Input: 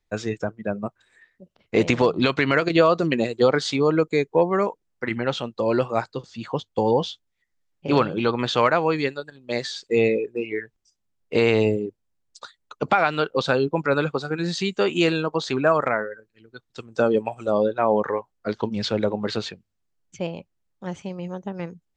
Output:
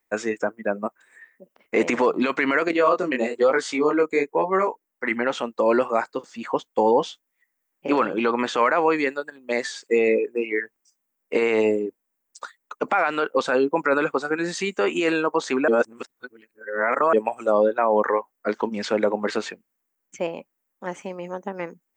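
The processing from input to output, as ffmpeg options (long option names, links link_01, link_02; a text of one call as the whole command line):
ffmpeg -i in.wav -filter_complex "[0:a]asettb=1/sr,asplit=3[link_01][link_02][link_03];[link_01]atrim=end=2.714[link_04];[link_02]atrim=start=2.71:end=5.05,asetpts=PTS-STARTPTS,afade=type=in:duration=0.004:curve=qsin,afade=type=out:start_time=2.336:duration=0.004:curve=qsin,flanger=delay=15.5:depth=7.7:speed=1.1[link_05];[link_03]atrim=start=5.046[link_06];[link_04][link_05]acrossfade=duration=0.004:curve1=hsin:curve2=qsin[link_07];[link_07][link_06]acrossfade=duration=0.004:curve1=qsin:curve2=hsin,asplit=3[link_08][link_09][link_10];[link_08]atrim=end=15.682[link_11];[link_09]atrim=start=15.678:end=17.132,asetpts=PTS-STARTPTS,areverse[link_12];[link_10]atrim=start=17.128[link_13];[link_11][link_12]acrossfade=duration=0.004:curve1=hsin:curve2=hsin[link_14];[link_14][link_13]acrossfade=duration=0.004:curve1=hsin:curve2=hsin,aemphasis=mode=production:type=bsi,alimiter=limit=-14dB:level=0:latency=1:release=14,equalizer=frequency=125:width_type=o:width=1:gain=-9,equalizer=frequency=250:width_type=o:width=1:gain=9,equalizer=frequency=500:width_type=o:width=1:gain=4,equalizer=frequency=1000:width_type=o:width=1:gain=6,equalizer=frequency=2000:width_type=o:width=1:gain=8,equalizer=frequency=4000:width_type=o:width=1:gain=-10,volume=-2dB" out.wav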